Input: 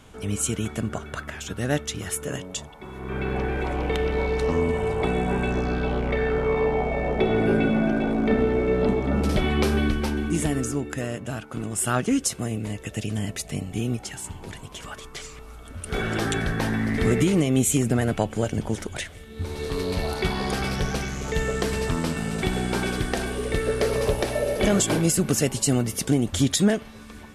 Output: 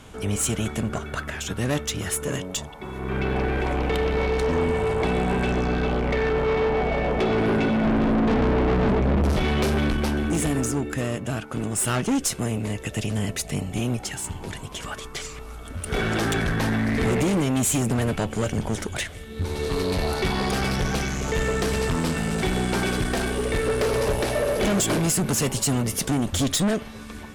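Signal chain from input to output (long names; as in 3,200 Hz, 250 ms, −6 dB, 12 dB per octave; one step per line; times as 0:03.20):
0:07.84–0:09.33: low-shelf EQ 340 Hz +12 dB
tube saturation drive 24 dB, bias 0.35
level +5.5 dB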